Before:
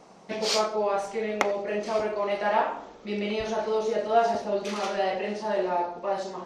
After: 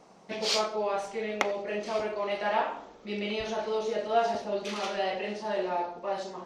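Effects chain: dynamic EQ 3200 Hz, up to +5 dB, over -45 dBFS, Q 1.1; gain -4 dB

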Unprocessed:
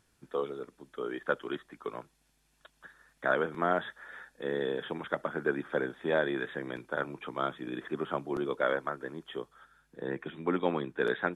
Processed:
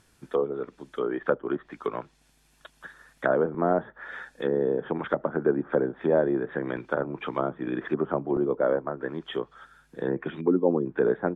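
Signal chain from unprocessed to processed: 10.41–10.86 spectral contrast raised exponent 1.7; treble ducked by the level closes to 720 Hz, closed at -30 dBFS; gain +8 dB

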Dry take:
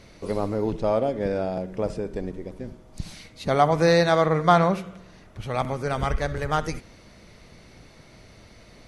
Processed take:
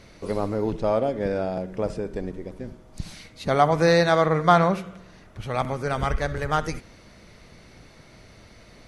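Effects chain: bell 1500 Hz +2 dB

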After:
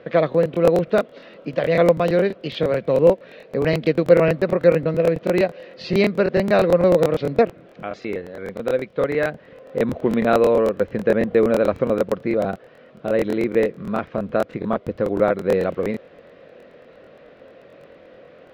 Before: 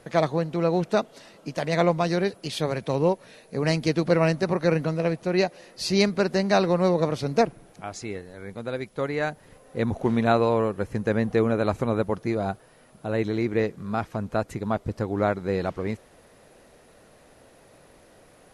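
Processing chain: in parallel at -3 dB: compressor, threshold -29 dBFS, peak gain reduction 13.5 dB; on the sum: speaker cabinet 100–3400 Hz, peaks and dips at 110 Hz -9 dB, 520 Hz +8 dB, 860 Hz -9 dB; crackling interface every 0.11 s, samples 1024, repeat, from 0.3; gain +1.5 dB

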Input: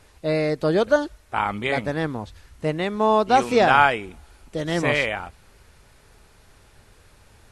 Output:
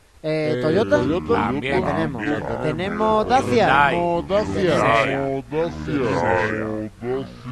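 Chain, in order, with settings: echoes that change speed 0.141 s, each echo -4 st, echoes 3

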